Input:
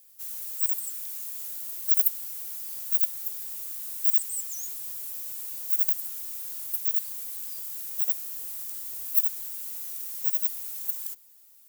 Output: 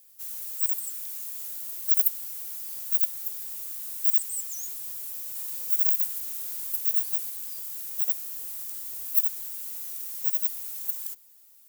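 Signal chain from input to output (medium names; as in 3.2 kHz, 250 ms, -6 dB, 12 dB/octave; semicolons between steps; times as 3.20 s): 5.23–7.30 s: chunks repeated in reverse 122 ms, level -2 dB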